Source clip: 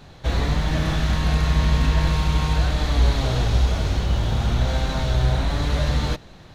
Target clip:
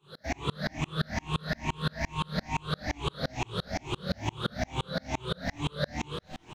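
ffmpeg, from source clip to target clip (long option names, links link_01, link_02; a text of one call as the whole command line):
ffmpeg -i in.wav -filter_complex "[0:a]afftfilt=real='re*pow(10,21/40*sin(2*PI*(0.67*log(max(b,1)*sr/1024/100)/log(2)-(2.3)*(pts-256)/sr)))':imag='im*pow(10,21/40*sin(2*PI*(0.67*log(max(b,1)*sr/1024/100)/log(2)-(2.3)*(pts-256)/sr)))':win_size=1024:overlap=0.75,highpass=150,asplit=2[link_01][link_02];[link_02]adelay=27,volume=-4dB[link_03];[link_01][link_03]amix=inputs=2:normalize=0,asplit=2[link_04][link_05];[link_05]asplit=3[link_06][link_07][link_08];[link_06]adelay=264,afreqshift=-140,volume=-19dB[link_09];[link_07]adelay=528,afreqshift=-280,volume=-27.9dB[link_10];[link_08]adelay=792,afreqshift=-420,volume=-36.7dB[link_11];[link_09][link_10][link_11]amix=inputs=3:normalize=0[link_12];[link_04][link_12]amix=inputs=2:normalize=0,acrossover=split=190|1900|5100[link_13][link_14][link_15][link_16];[link_13]acompressor=threshold=-28dB:ratio=4[link_17];[link_14]acompressor=threshold=-28dB:ratio=4[link_18];[link_15]acompressor=threshold=-34dB:ratio=4[link_19];[link_16]acompressor=threshold=-50dB:ratio=4[link_20];[link_17][link_18][link_19][link_20]amix=inputs=4:normalize=0,aeval=exprs='val(0)*pow(10,-35*if(lt(mod(-5.8*n/s,1),2*abs(-5.8)/1000),1-mod(-5.8*n/s,1)/(2*abs(-5.8)/1000),(mod(-5.8*n/s,1)-2*abs(-5.8)/1000)/(1-2*abs(-5.8)/1000))/20)':channel_layout=same,volume=1.5dB" out.wav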